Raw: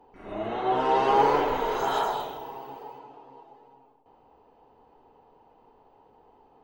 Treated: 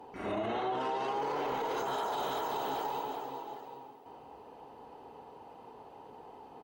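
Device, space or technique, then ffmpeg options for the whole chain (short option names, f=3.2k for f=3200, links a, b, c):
podcast mastering chain: -af "highpass=72,equalizer=f=9.3k:t=o:w=2.5:g=5.5,aecho=1:1:388|776|1164|1552:0.282|0.0986|0.0345|0.0121,deesser=0.9,acompressor=threshold=-33dB:ratio=6,alimiter=level_in=9dB:limit=-24dB:level=0:latency=1:release=21,volume=-9dB,volume=7dB" -ar 48000 -c:a libmp3lame -b:a 96k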